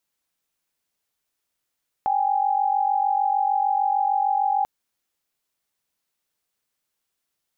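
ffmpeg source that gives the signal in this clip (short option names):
-f lavfi -i "aevalsrc='0.0841*(sin(2*PI*783.99*t)+sin(2*PI*830.61*t))':d=2.59:s=44100"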